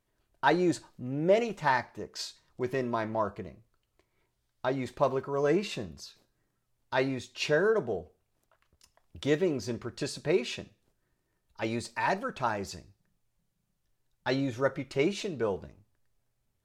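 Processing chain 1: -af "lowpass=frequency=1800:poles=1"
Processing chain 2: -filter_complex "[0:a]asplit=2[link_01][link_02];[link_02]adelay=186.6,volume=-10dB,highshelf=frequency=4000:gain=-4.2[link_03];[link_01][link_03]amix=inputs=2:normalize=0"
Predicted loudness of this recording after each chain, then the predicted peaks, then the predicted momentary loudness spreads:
−31.5, −30.5 LKFS; −12.5, −11.0 dBFS; 15, 13 LU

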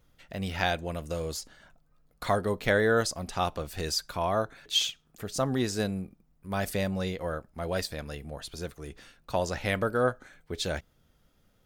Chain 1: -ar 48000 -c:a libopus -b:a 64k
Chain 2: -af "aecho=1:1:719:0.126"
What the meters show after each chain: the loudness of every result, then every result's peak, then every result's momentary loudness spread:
−30.5, −30.5 LKFS; −10.0, −10.0 dBFS; 14, 14 LU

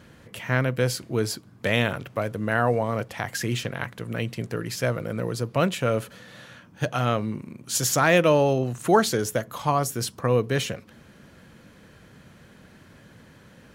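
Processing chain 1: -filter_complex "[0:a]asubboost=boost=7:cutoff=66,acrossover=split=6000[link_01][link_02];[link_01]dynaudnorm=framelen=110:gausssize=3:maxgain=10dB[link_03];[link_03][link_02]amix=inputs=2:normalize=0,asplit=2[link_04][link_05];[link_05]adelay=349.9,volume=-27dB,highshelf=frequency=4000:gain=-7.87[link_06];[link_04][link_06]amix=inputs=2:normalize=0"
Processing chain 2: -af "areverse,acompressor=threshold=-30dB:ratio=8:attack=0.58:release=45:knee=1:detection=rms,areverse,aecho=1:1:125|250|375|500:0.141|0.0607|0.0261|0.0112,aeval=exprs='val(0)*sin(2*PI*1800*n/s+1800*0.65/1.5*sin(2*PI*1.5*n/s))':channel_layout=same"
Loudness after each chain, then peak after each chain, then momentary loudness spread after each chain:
−18.5, −38.0 LKFS; −1.5, −23.5 dBFS; 10, 15 LU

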